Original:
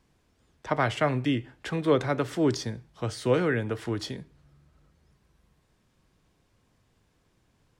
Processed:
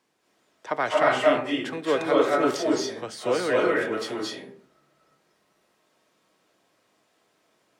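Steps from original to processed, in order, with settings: HPF 340 Hz 12 dB/oct; reverb RT60 0.55 s, pre-delay 0.19 s, DRR -4.5 dB

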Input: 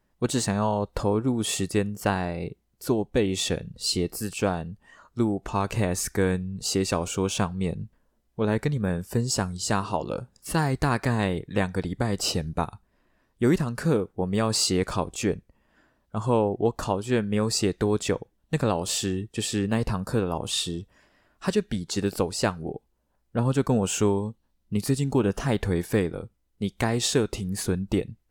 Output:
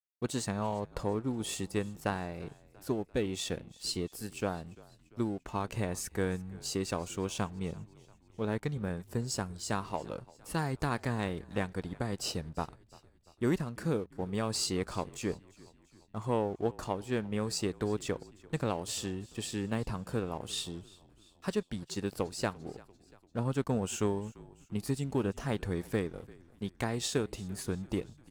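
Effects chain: crossover distortion -46 dBFS; added harmonics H 3 -22 dB, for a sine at -10 dBFS; frequency-shifting echo 0.343 s, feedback 56%, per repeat -43 Hz, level -22 dB; gain -6.5 dB

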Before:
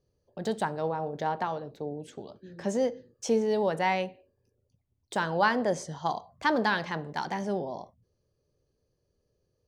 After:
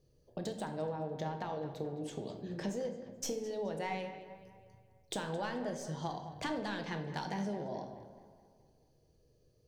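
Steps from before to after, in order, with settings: tracing distortion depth 0.027 ms; bell 1200 Hz -6 dB 1.4 oct; compressor 6:1, threshold -42 dBFS, peak gain reduction 19 dB; tape echo 0.214 s, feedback 53%, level -12 dB, low-pass 3600 Hz; reverb RT60 0.90 s, pre-delay 6 ms, DRR 5.5 dB; gain +4.5 dB

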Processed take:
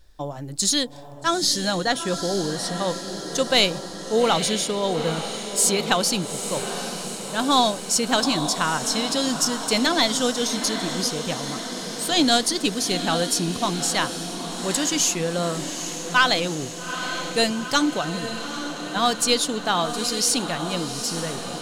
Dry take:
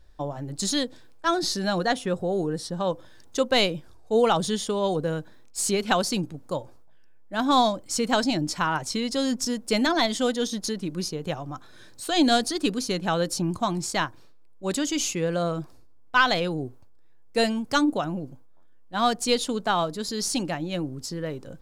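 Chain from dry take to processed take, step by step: high shelf 2900 Hz +9 dB; diffused feedback echo 0.852 s, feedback 67%, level -9 dB

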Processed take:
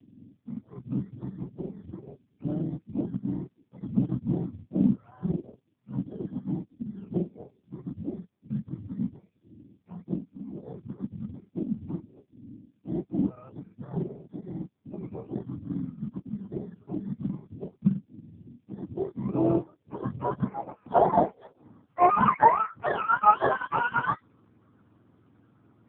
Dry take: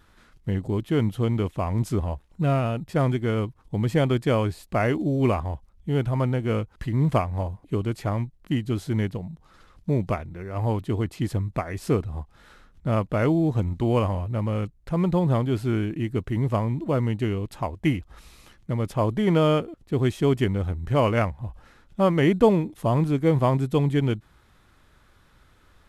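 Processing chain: spectrum mirrored in octaves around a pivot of 640 Hz; low-pass sweep 250 Hz -> 1300 Hz, 18.67–22.05; gain +1 dB; AMR-NB 5.15 kbps 8000 Hz

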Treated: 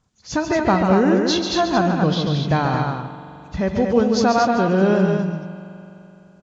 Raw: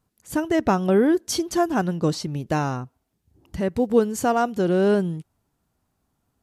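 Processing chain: nonlinear frequency compression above 2000 Hz 1.5:1; bell 350 Hz -5.5 dB 0.95 oct; in parallel at -0.5 dB: limiter -18 dBFS, peak gain reduction 9 dB; on the sum: tapped delay 0.14/0.23/0.386 s -6.5/-5/-19.5 dB; spring tank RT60 3.2 s, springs 42 ms, chirp 50 ms, DRR 11 dB

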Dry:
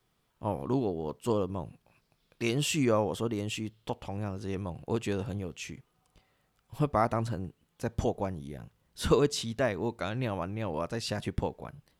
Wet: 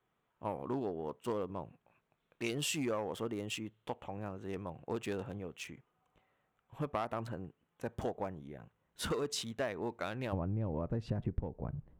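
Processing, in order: Wiener smoothing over 9 samples; high shelf 2200 Hz -11 dB; soft clip -18 dBFS, distortion -19 dB; tilt +3 dB/oct, from 10.32 s -3 dB/oct; compressor 12:1, threshold -31 dBFS, peak gain reduction 16 dB

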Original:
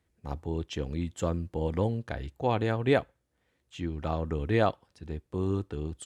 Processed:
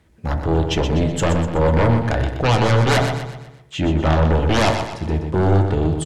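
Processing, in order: high shelf 6000 Hz -7 dB; in parallel at -5 dB: sine folder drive 17 dB, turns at -10.5 dBFS; on the sum: feedback echo 0.124 s, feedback 44%, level -7.5 dB; reverb RT60 0.70 s, pre-delay 3 ms, DRR 7 dB

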